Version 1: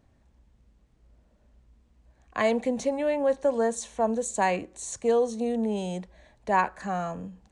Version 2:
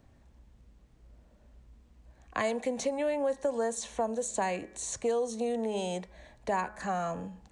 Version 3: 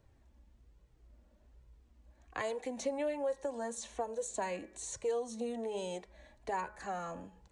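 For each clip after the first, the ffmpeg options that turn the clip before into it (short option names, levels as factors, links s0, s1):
-filter_complex "[0:a]bandreject=f=211.5:t=h:w=4,bandreject=f=423:t=h:w=4,bandreject=f=634.5:t=h:w=4,bandreject=f=846:t=h:w=4,bandreject=f=1057.5:t=h:w=4,bandreject=f=1269:t=h:w=4,bandreject=f=1480.5:t=h:w=4,bandreject=f=1692:t=h:w=4,bandreject=f=1903.5:t=h:w=4,bandreject=f=2115:t=h:w=4,bandreject=f=2326.5:t=h:w=4,acrossover=split=380|5900[s0][s1][s2];[s0]acompressor=threshold=0.00708:ratio=4[s3];[s1]acompressor=threshold=0.0224:ratio=4[s4];[s2]acompressor=threshold=0.00708:ratio=4[s5];[s3][s4][s5]amix=inputs=3:normalize=0,volume=1.41"
-af "flanger=delay=2:depth=1.6:regen=-24:speed=1.2:shape=sinusoidal,volume=0.75"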